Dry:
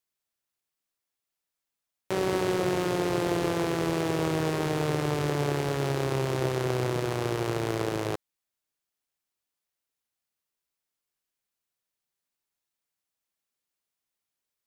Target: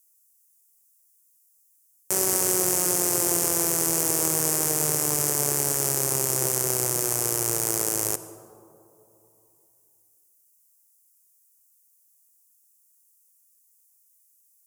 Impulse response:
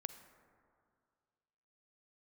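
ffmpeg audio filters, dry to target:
-filter_complex "[0:a]aexciter=amount=11.8:drive=8.3:freq=5800,asplit=2[link_01][link_02];[1:a]atrim=start_sample=2205,asetrate=29988,aresample=44100,lowshelf=frequency=260:gain=-7.5[link_03];[link_02][link_03]afir=irnorm=-1:irlink=0,volume=8dB[link_04];[link_01][link_04]amix=inputs=2:normalize=0,volume=-11.5dB"

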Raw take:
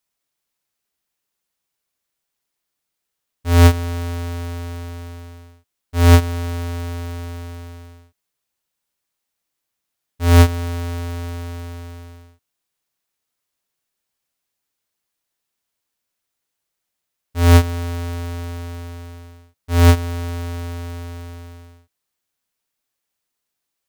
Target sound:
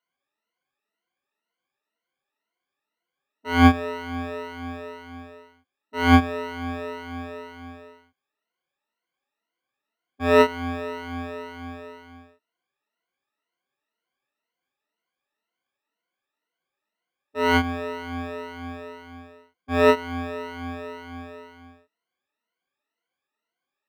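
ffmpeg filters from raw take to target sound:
ffmpeg -i in.wav -filter_complex "[0:a]afftfilt=real='re*pow(10,23/40*sin(2*PI*(1.9*log(max(b,1)*sr/1024/100)/log(2)-(2)*(pts-256)/sr)))':imag='im*pow(10,23/40*sin(2*PI*(1.9*log(max(b,1)*sr/1024/100)/log(2)-(2)*(pts-256)/sr)))':win_size=1024:overlap=0.75,acrossover=split=190 3300:gain=0.112 1 0.1[link_01][link_02][link_03];[link_01][link_02][link_03]amix=inputs=3:normalize=0,volume=-3.5dB" out.wav

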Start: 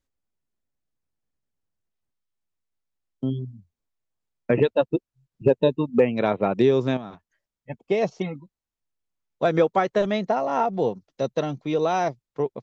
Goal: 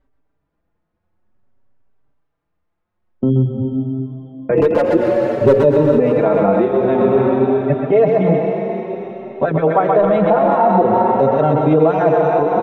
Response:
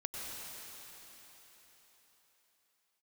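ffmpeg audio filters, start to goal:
-filter_complex "[0:a]lowpass=1300,bandreject=frequency=60:width_type=h:width=6,bandreject=frequency=120:width_type=h:width=6,bandreject=frequency=180:width_type=h:width=6,bandreject=frequency=240:width_type=h:width=6,bandreject=frequency=300:width_type=h:width=6,bandreject=frequency=360:width_type=h:width=6,bandreject=frequency=420:width_type=h:width=6,bandreject=frequency=480:width_type=h:width=6,bandreject=frequency=540:width_type=h:width=6,asplit=2[link_01][link_02];[link_02]acompressor=threshold=-36dB:ratio=6,volume=-2.5dB[link_03];[link_01][link_03]amix=inputs=2:normalize=0,asettb=1/sr,asplit=3[link_04][link_05][link_06];[link_04]atrim=end=4.544[link_07];[link_05]atrim=start=4.54:end=5.6,asetpts=PTS-STARTPTS,afade=type=in:duration=0.004:curve=qsin,afade=type=out:start_time=1.056:duration=0.004:curve=qsin,volume=14dB,asoftclip=hard,volume=-14dB[link_08];[link_06]atrim=start=5.596[link_09];[link_07][link_08]acrossfade=duration=0.004:curve1=hsin:curve2=qsin[link_10];[link_10][link_09]acrossfade=duration=0.004:curve1=qsin:curve2=hsin,asplit=2[link_11][link_12];[1:a]atrim=start_sample=2205,lowshelf=frequency=350:gain=-5.5,adelay=129[link_13];[link_12][link_13]afir=irnorm=-1:irlink=0,volume=-3dB[link_14];[link_11][link_14]amix=inputs=2:normalize=0,alimiter=level_in=18dB:limit=-1dB:release=50:level=0:latency=1,asplit=2[link_15][link_16];[link_16]adelay=4.7,afreqshift=0.52[link_17];[link_15][link_17]amix=inputs=2:normalize=1,volume=-1.5dB"

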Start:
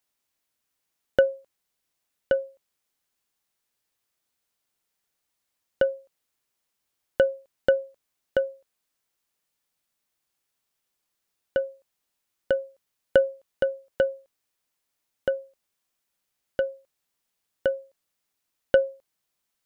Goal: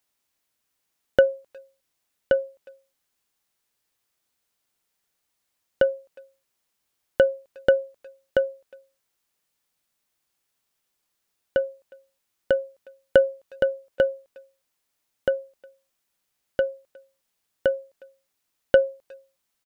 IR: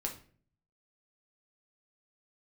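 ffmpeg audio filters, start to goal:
-filter_complex "[0:a]asplit=2[link_01][link_02];[link_02]adelay=360,highpass=300,lowpass=3400,asoftclip=type=hard:threshold=-16dB,volume=-26dB[link_03];[link_01][link_03]amix=inputs=2:normalize=0,volume=2.5dB"

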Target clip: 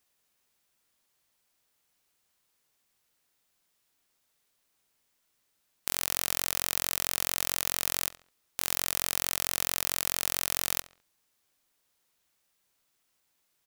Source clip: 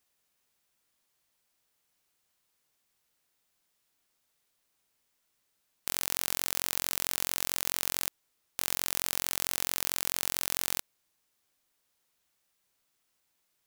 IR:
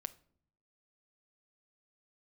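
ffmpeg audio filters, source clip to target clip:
-filter_complex "[0:a]asplit=2[link_01][link_02];[link_02]adelay=69,lowpass=frequency=4100:poles=1,volume=-16dB,asplit=2[link_03][link_04];[link_04]adelay=69,lowpass=frequency=4100:poles=1,volume=0.38,asplit=2[link_05][link_06];[link_06]adelay=69,lowpass=frequency=4100:poles=1,volume=0.38[link_07];[link_01][link_03][link_05][link_07]amix=inputs=4:normalize=0,volume=1.5dB"

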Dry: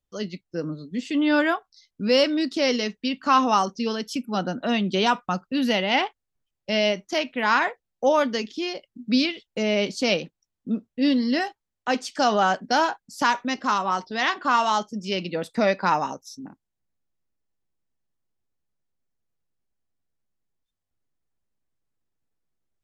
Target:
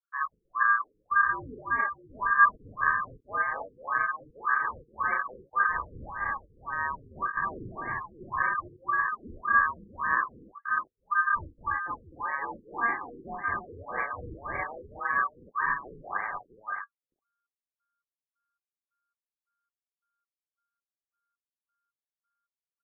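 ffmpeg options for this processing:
ffmpeg -i in.wav -filter_complex "[0:a]areverse,acompressor=threshold=-31dB:ratio=12,areverse,afwtdn=0.00708,equalizer=frequency=125:width_type=o:width=1:gain=7,equalizer=frequency=250:width_type=o:width=1:gain=4,equalizer=frequency=500:width_type=o:width=1:gain=5,equalizer=frequency=1000:width_type=o:width=1:gain=-4,equalizer=frequency=2000:width_type=o:width=1:gain=5,equalizer=frequency=4000:width_type=o:width=1:gain=-10,equalizer=frequency=8000:width_type=o:width=1:gain=-5,asetrate=31183,aresample=44100,atempo=1.41421,equalizer=frequency=240:width=3.3:gain=14.5,asplit=2[link_01][link_02];[link_02]aecho=0:1:40|78|242|296|653:0.631|0.141|0.531|0.668|0.398[link_03];[link_01][link_03]amix=inputs=2:normalize=0,aeval=exprs='val(0)*sin(2*PI*1400*n/s)':channel_layout=same,afftfilt=real='re*lt(b*sr/1024,480*pow(2400/480,0.5+0.5*sin(2*PI*1.8*pts/sr)))':imag='im*lt(b*sr/1024,480*pow(2400/480,0.5+0.5*sin(2*PI*1.8*pts/sr)))':win_size=1024:overlap=0.75" out.wav

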